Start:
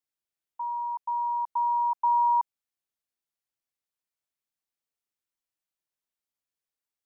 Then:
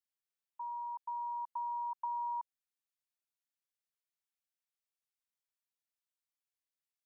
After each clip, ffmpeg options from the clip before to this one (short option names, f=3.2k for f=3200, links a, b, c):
-af "highpass=1k,acompressor=threshold=-31dB:ratio=4,volume=-5.5dB"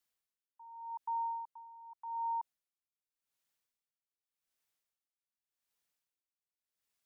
-af "alimiter=level_in=16dB:limit=-24dB:level=0:latency=1,volume=-16dB,afreqshift=-31,aeval=exprs='val(0)*pow(10,-19*(0.5-0.5*cos(2*PI*0.86*n/s))/20)':c=same,volume=8.5dB"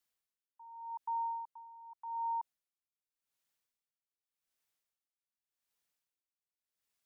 -af anull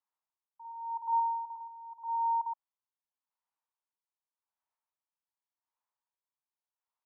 -filter_complex "[0:a]bandpass=f=940:t=q:w=4.1:csg=0,asplit=2[a][b];[b]aecho=0:1:50|120:0.631|0.631[c];[a][c]amix=inputs=2:normalize=0,volume=5dB"